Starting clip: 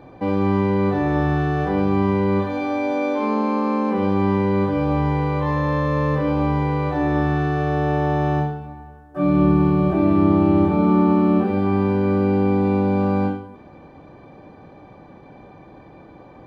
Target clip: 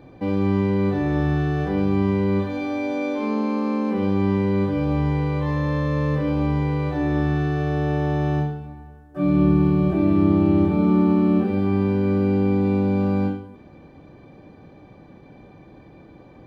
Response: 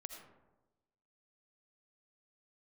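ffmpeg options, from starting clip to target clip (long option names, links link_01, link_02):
-af "equalizer=frequency=930:width=0.76:gain=-7.5"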